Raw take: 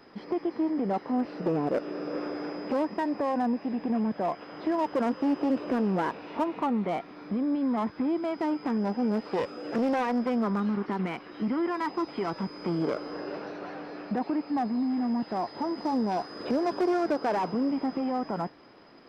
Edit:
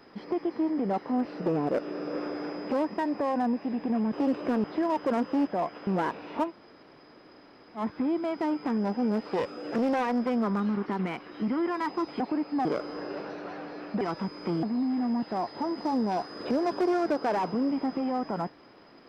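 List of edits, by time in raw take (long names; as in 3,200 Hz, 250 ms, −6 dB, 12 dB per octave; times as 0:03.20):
0:04.13–0:04.53: swap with 0:05.36–0:05.87
0:06.48–0:07.79: fill with room tone, crossfade 0.10 s
0:12.20–0:12.82: swap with 0:14.18–0:14.63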